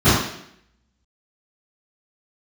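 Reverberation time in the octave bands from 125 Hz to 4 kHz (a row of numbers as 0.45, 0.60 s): 0.65, 0.75, 0.75, 0.70, 0.75, 0.70 s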